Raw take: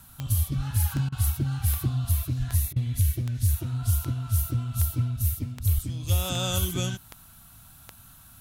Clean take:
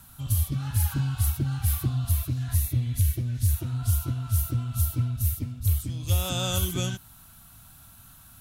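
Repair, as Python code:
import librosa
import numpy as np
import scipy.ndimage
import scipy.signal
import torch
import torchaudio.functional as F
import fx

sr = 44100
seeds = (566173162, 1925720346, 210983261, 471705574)

y = fx.fix_declick_ar(x, sr, threshold=10.0)
y = fx.fix_deplosive(y, sr, at_s=(0.56, 2.38, 5.74))
y = fx.fix_interpolate(y, sr, at_s=(1.09, 2.73), length_ms=31.0)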